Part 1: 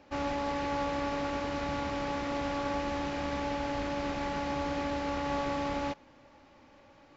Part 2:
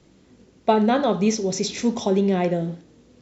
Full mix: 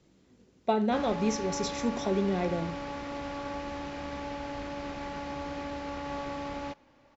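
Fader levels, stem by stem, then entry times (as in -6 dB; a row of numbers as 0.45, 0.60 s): -4.0, -8.5 dB; 0.80, 0.00 s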